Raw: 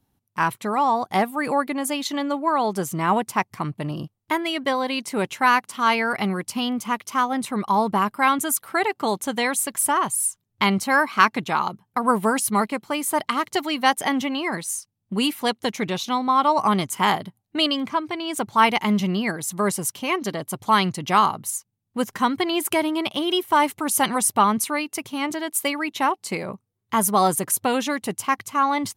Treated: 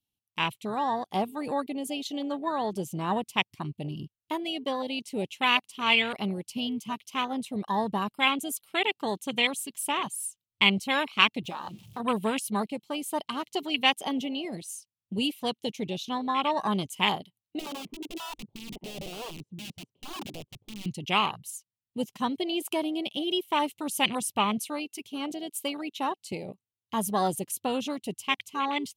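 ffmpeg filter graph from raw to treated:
-filter_complex "[0:a]asettb=1/sr,asplit=3[a][b][c];[a]atrim=end=11.444[d];[b]atrim=start=11.44:end=12,asetpts=PTS-STARTPTS,afade=t=in:d=0.004:c=qsin,afade=t=out:st=0.556:d=0.004:c=qsin,aeval=exprs='val(0)+0.5*0.0168*sgn(val(0))':c=same,acompressor=threshold=-26dB:ratio=2:attack=3.2:release=140:knee=1:detection=peak[e];[c]atrim=start=11.996[f];[d][e]acrossfade=d=0.004:c1=hsin:c2=qsin[g];[g][f]acrossfade=d=0.004:c1=qsin:c2=hsin,asettb=1/sr,asplit=3[h][i][j];[h]atrim=end=17.594[k];[i]atrim=start=17.59:end=20.86,asetpts=PTS-STARTPTS,afade=t=in:d=0.004:c=qsin,afade=t=out:st=3.266:d=0.004:c=qsin,acompressor=threshold=-24dB:ratio=3:attack=3.2:release=140:knee=1:detection=peak,lowpass=f=450:t=q:w=1.7,aeval=exprs='(mod(16.8*val(0)+1,2)-1)/16.8':c=same[l];[j]atrim=start=20.856[m];[k][l]acrossfade=d=0.004:c1=hsin:c2=qsin[n];[n][m]acrossfade=d=0.004:c1=qsin:c2=hsin,afwtdn=0.0631,highshelf=f=2.1k:t=q:w=3:g=10.5,volume=-6dB"

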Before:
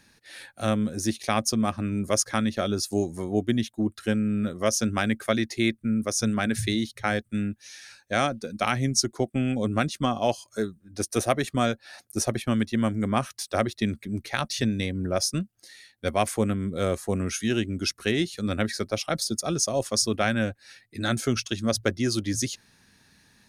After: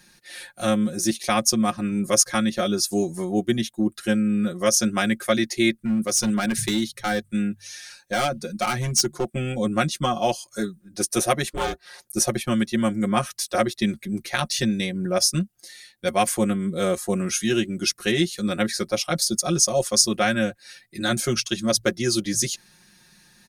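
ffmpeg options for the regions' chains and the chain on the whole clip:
-filter_complex "[0:a]asettb=1/sr,asplit=3[a][b][c];[a]atrim=end=5.764[d];[b]atrim=start=5.76:end=9.26,asetpts=PTS-STARTPTS,afade=t=in:d=0.004:c=qsin,afade=t=out:st=3.496:d=0.004:c=qsin,bandreject=f=49.42:t=h:w=4,bandreject=f=98.84:t=h:w=4,bandreject=f=148.26:t=h:w=4,asoftclip=type=hard:threshold=-20dB[e];[c]atrim=start=9.256[f];[d][e]acrossfade=d=0.004:c1=hsin:c2=qsin[g];[g][f]acrossfade=d=0.004:c1=qsin:c2=hsin,asettb=1/sr,asplit=3[h][i][j];[h]atrim=end=11.484[k];[i]atrim=start=11.48:end=12.05,asetpts=PTS-STARTPTS,afade=t=in:d=0.004:c=qsin,afade=t=out:st=0.566:d=0.004:c=qsin,aeval=exprs='val(0)*sin(2*PI*160*n/s)':c=same,asoftclip=type=hard:threshold=-20.5dB[l];[j]atrim=start=12.046[m];[k][l]acrossfade=d=0.004:c1=hsin:c2=qsin[n];[n][m]acrossfade=d=0.004:c1=qsin:c2=hsin,highshelf=f=4.9k:g=6.5,aecho=1:1:5.6:0.89"

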